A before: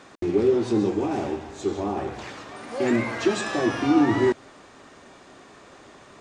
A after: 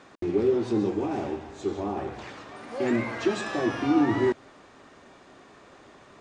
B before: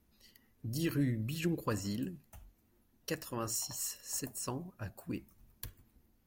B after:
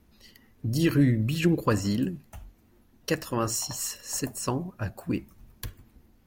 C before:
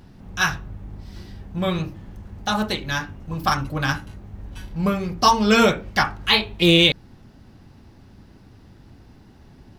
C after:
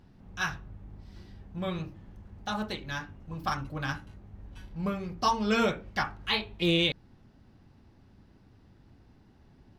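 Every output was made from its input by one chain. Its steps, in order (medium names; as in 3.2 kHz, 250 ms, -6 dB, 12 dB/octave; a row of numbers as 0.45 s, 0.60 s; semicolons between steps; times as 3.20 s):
treble shelf 6.6 kHz -8 dB; peak normalisation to -12 dBFS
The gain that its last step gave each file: -3.0 dB, +11.0 dB, -10.0 dB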